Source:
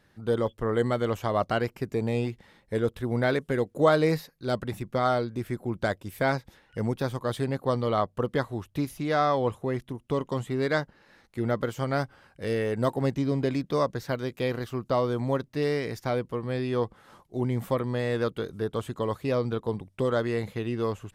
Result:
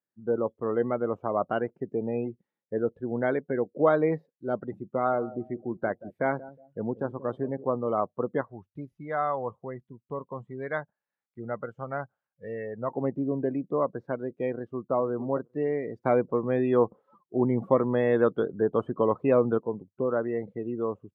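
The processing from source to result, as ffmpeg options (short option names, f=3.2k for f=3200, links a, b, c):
-filter_complex "[0:a]asettb=1/sr,asplit=3[a][b][c];[a]atrim=end=4.864[d];[b]atrim=start=4.86:end=7.64,asetpts=PTS-STARTPTS,afade=t=in:d=0.004:c=qsin,afade=t=out:st=2.776:d=0.004:c=qsin,asplit=2[e][f];[f]adelay=181,lowpass=f=2k:p=1,volume=-16dB,asplit=2[g][h];[h]adelay=181,lowpass=f=2k:p=1,volume=0.42,asplit=2[i][j];[j]adelay=181,lowpass=f=2k:p=1,volume=0.42,asplit=2[k][l];[l]adelay=181,lowpass=f=2k:p=1,volume=0.42[m];[e][g][i][k][m]amix=inputs=5:normalize=0,atrim=end_sample=122598[n];[c]atrim=start=7.636[o];[d][n]acrossfade=d=0.004:c1=hsin:c2=qsin[p];[p][o]acrossfade=d=0.004:c1=qsin:c2=hsin,asettb=1/sr,asplit=3[q][r][s];[q]atrim=end=8.414[t];[r]atrim=start=8.41:end=12.91,asetpts=PTS-STARTPTS,afade=t=in:d=0.004:c=qsin,afade=t=out:st=4.496:d=0.004:c=qsin,equalizer=f=310:w=1:g=-10.5[u];[s]atrim=start=12.906[v];[t][u]acrossfade=d=0.004:c1=hsin:c2=qsin[w];[w][v]acrossfade=d=0.004:c1=qsin:c2=hsin,asplit=2[x][y];[y]afade=t=in:st=14.52:d=0.01,afade=t=out:st=14.92:d=0.01,aecho=0:1:460|920|1380:0.354813|0.0709627|0.0141925[z];[x][z]amix=inputs=2:normalize=0,asplit=3[aa][ab][ac];[aa]afade=t=out:st=16.04:d=0.02[ad];[ab]acontrast=60,afade=t=in:st=16.04:d=0.02,afade=t=out:st=19.57:d=0.02[ae];[ac]afade=t=in:st=19.57:d=0.02[af];[ad][ae][af]amix=inputs=3:normalize=0,lowpass=f=1.5k:p=1,afftdn=nr=30:nf=-37,highpass=200"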